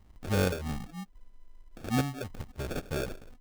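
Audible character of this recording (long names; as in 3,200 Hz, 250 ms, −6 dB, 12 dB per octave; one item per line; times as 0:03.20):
a quantiser's noise floor 12 bits, dither triangular
chopped level 0.87 Hz, depth 65%, duty 75%
phaser sweep stages 4, 3.1 Hz, lowest notch 140–3,600 Hz
aliases and images of a low sample rate 1,000 Hz, jitter 0%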